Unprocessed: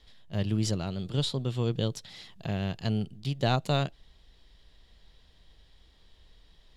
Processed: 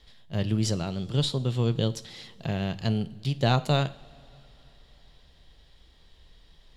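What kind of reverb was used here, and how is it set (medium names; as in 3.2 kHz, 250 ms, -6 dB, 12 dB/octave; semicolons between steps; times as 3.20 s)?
two-slope reverb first 0.5 s, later 4 s, from -19 dB, DRR 13 dB; trim +2.5 dB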